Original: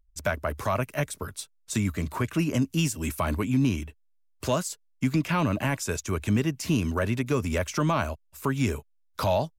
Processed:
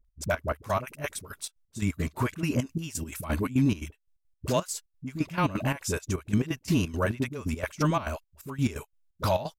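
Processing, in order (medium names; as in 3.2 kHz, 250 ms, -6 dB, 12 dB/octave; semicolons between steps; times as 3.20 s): phase dispersion highs, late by 49 ms, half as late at 440 Hz; trance gate "x.xx.x..x.x.x" 173 bpm -12 dB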